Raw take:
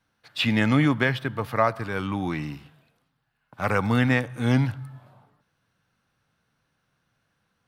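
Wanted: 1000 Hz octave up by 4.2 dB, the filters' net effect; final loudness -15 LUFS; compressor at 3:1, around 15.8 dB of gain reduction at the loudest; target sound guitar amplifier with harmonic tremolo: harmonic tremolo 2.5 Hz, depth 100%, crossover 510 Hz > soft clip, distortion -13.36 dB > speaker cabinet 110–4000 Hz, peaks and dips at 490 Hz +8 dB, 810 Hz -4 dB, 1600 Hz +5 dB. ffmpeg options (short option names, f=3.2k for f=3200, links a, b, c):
-filter_complex "[0:a]equalizer=f=1k:t=o:g=5.5,acompressor=threshold=-34dB:ratio=3,acrossover=split=510[a][b];[a]aeval=exprs='val(0)*(1-1/2+1/2*cos(2*PI*2.5*n/s))':c=same[c];[b]aeval=exprs='val(0)*(1-1/2-1/2*cos(2*PI*2.5*n/s))':c=same[d];[c][d]amix=inputs=2:normalize=0,asoftclip=threshold=-32.5dB,highpass=110,equalizer=f=490:t=q:w=4:g=8,equalizer=f=810:t=q:w=4:g=-4,equalizer=f=1.6k:t=q:w=4:g=5,lowpass=f=4k:w=0.5412,lowpass=f=4k:w=1.3066,volume=26.5dB"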